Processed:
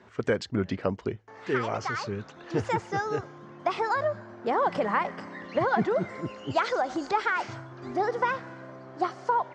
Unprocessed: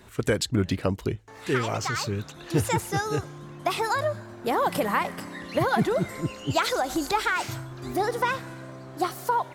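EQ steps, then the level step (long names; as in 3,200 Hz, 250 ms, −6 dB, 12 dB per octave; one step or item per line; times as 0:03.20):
high-frequency loss of the air 75 metres
loudspeaker in its box 140–6,700 Hz, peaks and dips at 150 Hz −7 dB, 300 Hz −5 dB, 2,600 Hz −4 dB, 3,800 Hz −7 dB
high-shelf EQ 4,400 Hz −5.5 dB
0.0 dB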